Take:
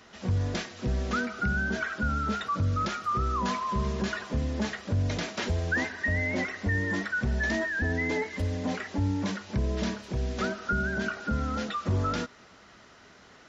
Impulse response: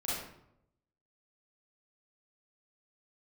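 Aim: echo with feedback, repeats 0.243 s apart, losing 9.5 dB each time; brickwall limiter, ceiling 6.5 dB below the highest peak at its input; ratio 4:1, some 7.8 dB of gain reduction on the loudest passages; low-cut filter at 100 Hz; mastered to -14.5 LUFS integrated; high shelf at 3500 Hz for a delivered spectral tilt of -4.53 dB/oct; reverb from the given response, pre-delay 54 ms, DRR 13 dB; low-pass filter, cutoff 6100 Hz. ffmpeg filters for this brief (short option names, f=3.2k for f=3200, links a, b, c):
-filter_complex "[0:a]highpass=100,lowpass=6.1k,highshelf=f=3.5k:g=-3,acompressor=threshold=-35dB:ratio=4,alimiter=level_in=6.5dB:limit=-24dB:level=0:latency=1,volume=-6.5dB,aecho=1:1:243|486|729|972:0.335|0.111|0.0365|0.012,asplit=2[a][b];[1:a]atrim=start_sample=2205,adelay=54[c];[b][c]afir=irnorm=-1:irlink=0,volume=-17.5dB[d];[a][d]amix=inputs=2:normalize=0,volume=24dB"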